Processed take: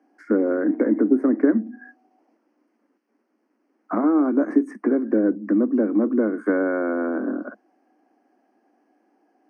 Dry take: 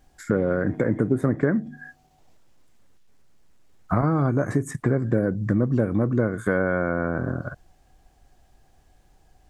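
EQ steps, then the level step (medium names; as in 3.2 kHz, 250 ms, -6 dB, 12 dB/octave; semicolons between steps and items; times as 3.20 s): boxcar filter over 12 samples; steep high-pass 210 Hz 96 dB/octave; peaking EQ 300 Hz +10.5 dB 0.43 oct; 0.0 dB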